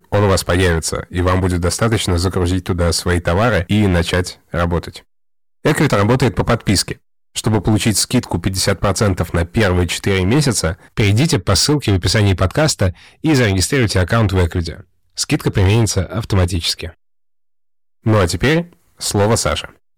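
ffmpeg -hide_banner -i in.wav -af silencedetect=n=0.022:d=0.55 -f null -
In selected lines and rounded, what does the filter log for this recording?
silence_start: 4.99
silence_end: 5.65 | silence_duration: 0.65
silence_start: 16.91
silence_end: 18.06 | silence_duration: 1.15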